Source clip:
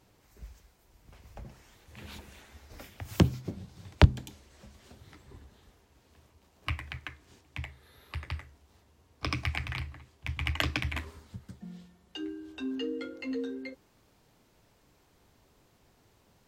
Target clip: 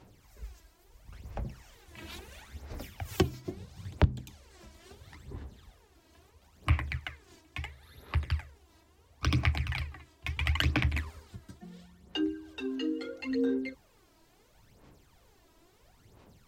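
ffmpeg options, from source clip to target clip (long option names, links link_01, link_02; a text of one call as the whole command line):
ffmpeg -i in.wav -af "aphaser=in_gain=1:out_gain=1:delay=3.1:decay=0.64:speed=0.74:type=sinusoidal,alimiter=limit=-12dB:level=0:latency=1:release=477" out.wav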